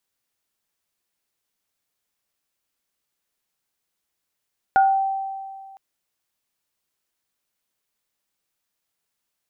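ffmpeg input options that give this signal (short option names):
-f lavfi -i "aevalsrc='0.266*pow(10,-3*t/2)*sin(2*PI*777*t)+0.126*pow(10,-3*t/0.32)*sin(2*PI*1440*t)':d=1.01:s=44100"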